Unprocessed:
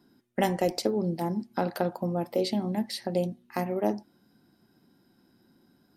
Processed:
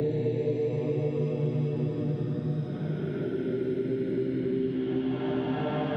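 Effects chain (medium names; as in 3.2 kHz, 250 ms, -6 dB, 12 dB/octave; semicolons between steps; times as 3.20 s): distance through air 150 m; ever faster or slower copies 746 ms, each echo -3 st, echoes 2; Paulstretch 12×, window 0.25 s, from 4.49 s; three bands compressed up and down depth 100%; trim +1 dB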